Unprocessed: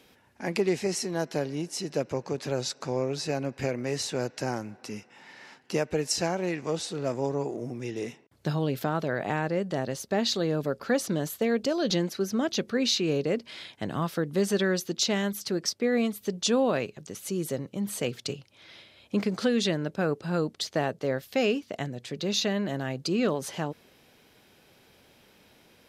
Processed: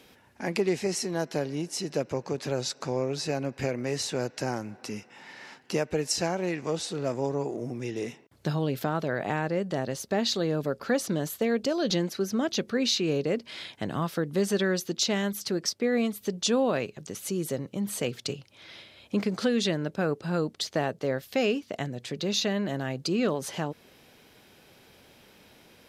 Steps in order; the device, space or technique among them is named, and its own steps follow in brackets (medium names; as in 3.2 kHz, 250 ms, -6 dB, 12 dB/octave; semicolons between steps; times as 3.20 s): parallel compression (in parallel at -3.5 dB: compression, threshold -37 dBFS, peak gain reduction 16 dB); on the sum: trim -1.5 dB